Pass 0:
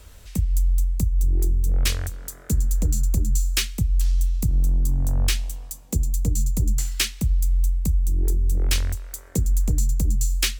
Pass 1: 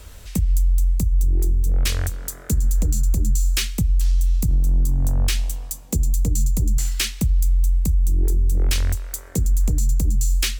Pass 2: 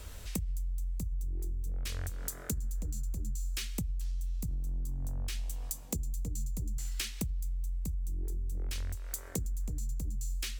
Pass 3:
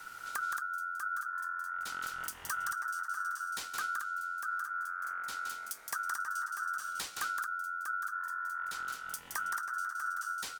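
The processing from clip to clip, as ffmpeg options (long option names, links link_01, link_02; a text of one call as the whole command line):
ffmpeg -i in.wav -af "alimiter=limit=-17dB:level=0:latency=1:release=65,volume=5dB" out.wav
ffmpeg -i in.wav -af "acompressor=threshold=-27dB:ratio=16,volume=-4.5dB" out.wav
ffmpeg -i in.wav -af "aecho=1:1:169.1|224.5:0.562|0.447,aeval=exprs='val(0)*sin(2*PI*1400*n/s)':channel_layout=same" out.wav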